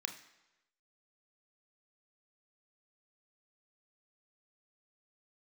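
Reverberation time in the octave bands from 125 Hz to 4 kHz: 0.95, 0.90, 1.0, 1.0, 1.0, 0.90 s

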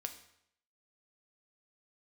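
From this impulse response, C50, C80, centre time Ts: 11.0 dB, 13.5 dB, 11 ms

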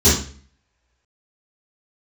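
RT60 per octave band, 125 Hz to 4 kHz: 0.55, 0.55, 0.45, 0.40, 0.45, 0.40 s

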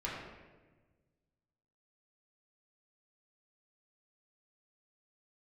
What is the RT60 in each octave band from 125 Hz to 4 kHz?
2.1, 1.7, 1.5, 1.2, 1.1, 0.90 s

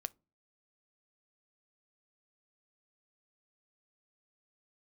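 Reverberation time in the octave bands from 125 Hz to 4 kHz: 0.50, 0.45, 0.35, 0.30, 0.20, 0.15 s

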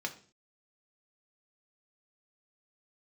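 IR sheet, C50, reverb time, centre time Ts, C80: 14.0 dB, 0.40 s, 8 ms, 18.0 dB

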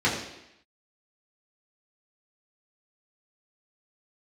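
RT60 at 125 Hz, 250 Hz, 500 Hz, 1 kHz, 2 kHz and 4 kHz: 0.70, 0.85, 0.80, 0.85, 0.90, 0.85 s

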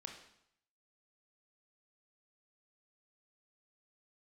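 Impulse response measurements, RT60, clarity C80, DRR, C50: 0.70 s, 9.0 dB, 2.5 dB, 6.0 dB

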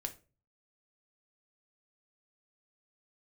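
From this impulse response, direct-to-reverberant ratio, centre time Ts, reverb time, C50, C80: 5.0 dB, 6 ms, 0.35 s, 15.5 dB, 21.5 dB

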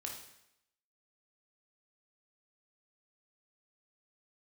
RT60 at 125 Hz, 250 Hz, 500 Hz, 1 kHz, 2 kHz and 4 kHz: 0.75, 0.80, 0.80, 0.80, 0.80, 0.80 s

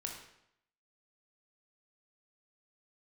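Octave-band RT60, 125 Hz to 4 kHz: 0.75, 0.75, 0.75, 0.75, 0.70, 0.65 s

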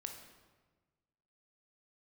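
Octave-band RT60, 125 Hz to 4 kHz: 1.8, 1.6, 1.4, 1.3, 1.1, 0.95 s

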